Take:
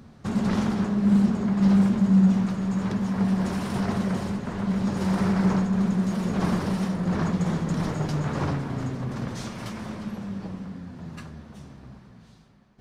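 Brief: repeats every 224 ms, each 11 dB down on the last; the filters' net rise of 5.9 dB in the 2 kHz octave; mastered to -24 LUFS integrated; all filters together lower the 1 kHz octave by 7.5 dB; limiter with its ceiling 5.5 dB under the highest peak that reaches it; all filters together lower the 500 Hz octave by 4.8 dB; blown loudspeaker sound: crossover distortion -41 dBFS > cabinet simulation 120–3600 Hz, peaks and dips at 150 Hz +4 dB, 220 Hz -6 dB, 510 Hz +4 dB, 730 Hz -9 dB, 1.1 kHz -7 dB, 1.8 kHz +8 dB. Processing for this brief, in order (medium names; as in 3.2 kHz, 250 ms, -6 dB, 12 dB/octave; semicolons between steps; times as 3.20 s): peaking EQ 500 Hz -6 dB; peaking EQ 1 kHz -3 dB; peaking EQ 2 kHz +3.5 dB; peak limiter -16.5 dBFS; feedback delay 224 ms, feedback 28%, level -11 dB; crossover distortion -41 dBFS; cabinet simulation 120–3600 Hz, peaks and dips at 150 Hz +4 dB, 220 Hz -6 dB, 510 Hz +4 dB, 730 Hz -9 dB, 1.1 kHz -7 dB, 1.8 kHz +8 dB; trim +5.5 dB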